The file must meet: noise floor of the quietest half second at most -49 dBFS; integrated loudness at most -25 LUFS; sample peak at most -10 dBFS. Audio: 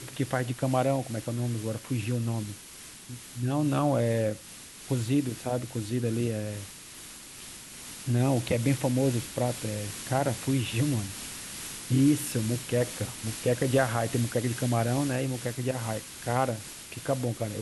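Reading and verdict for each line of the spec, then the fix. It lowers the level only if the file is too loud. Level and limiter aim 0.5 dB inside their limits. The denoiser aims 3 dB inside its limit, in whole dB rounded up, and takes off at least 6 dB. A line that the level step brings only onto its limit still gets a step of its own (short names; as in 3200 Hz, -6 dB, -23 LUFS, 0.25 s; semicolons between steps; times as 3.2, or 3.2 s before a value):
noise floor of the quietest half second -47 dBFS: fail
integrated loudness -29.0 LUFS: OK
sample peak -11.5 dBFS: OK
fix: denoiser 6 dB, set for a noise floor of -47 dBFS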